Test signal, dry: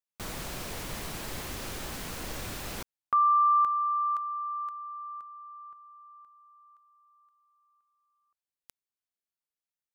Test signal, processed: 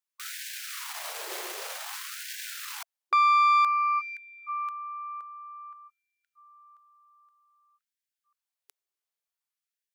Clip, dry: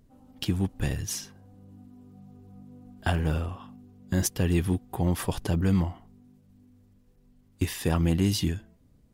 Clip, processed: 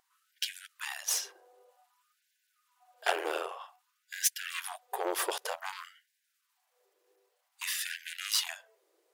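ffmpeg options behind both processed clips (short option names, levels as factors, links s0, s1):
-af "aeval=exprs='(tanh(15.8*val(0)+0.75)-tanh(0.75))/15.8':c=same,afftfilt=real='re*gte(b*sr/1024,320*pow(1500/320,0.5+0.5*sin(2*PI*0.53*pts/sr)))':imag='im*gte(b*sr/1024,320*pow(1500/320,0.5+0.5*sin(2*PI*0.53*pts/sr)))':win_size=1024:overlap=0.75,volume=2.24"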